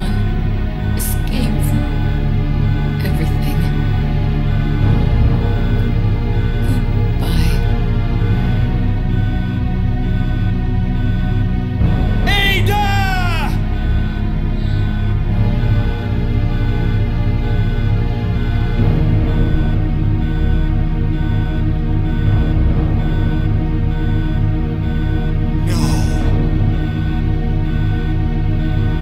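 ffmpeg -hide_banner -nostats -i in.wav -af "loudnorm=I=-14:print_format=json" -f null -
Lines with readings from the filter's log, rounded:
"input_i" : "-17.4",
"input_tp" : "-2.8",
"input_lra" : "1.6",
"input_thresh" : "-27.4",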